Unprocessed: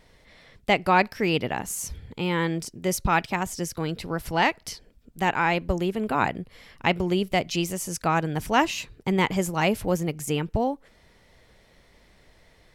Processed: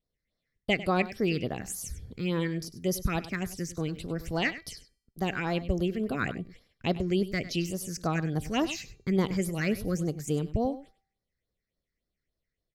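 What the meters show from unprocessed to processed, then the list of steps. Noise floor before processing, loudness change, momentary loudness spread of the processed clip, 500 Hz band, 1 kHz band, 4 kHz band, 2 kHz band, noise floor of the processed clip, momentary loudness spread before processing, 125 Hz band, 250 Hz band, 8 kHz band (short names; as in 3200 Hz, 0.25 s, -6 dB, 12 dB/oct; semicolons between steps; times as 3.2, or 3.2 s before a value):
-58 dBFS, -5.0 dB, 8 LU, -4.5 dB, -11.5 dB, -6.0 dB, -7.5 dB, under -85 dBFS, 8 LU, -2.0 dB, -2.5 dB, -6.0 dB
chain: gate -46 dBFS, range -26 dB; bell 890 Hz -12.5 dB 0.22 oct; phaser stages 6, 3.5 Hz, lowest notch 760–2600 Hz; resonator 390 Hz, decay 0.61 s, mix 40%; echo 99 ms -15 dB; gain +1.5 dB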